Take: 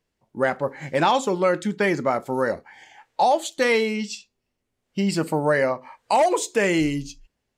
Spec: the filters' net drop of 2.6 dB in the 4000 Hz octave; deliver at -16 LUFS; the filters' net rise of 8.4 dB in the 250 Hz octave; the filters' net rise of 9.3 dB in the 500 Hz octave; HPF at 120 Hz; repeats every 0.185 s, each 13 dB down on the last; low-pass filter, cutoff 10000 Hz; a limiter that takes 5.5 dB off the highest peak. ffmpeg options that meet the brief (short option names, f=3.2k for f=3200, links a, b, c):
-af "highpass=120,lowpass=10k,equalizer=f=250:t=o:g=8.5,equalizer=f=500:t=o:g=9,equalizer=f=4k:t=o:g=-3.5,alimiter=limit=-6dB:level=0:latency=1,aecho=1:1:185|370|555:0.224|0.0493|0.0108,volume=0.5dB"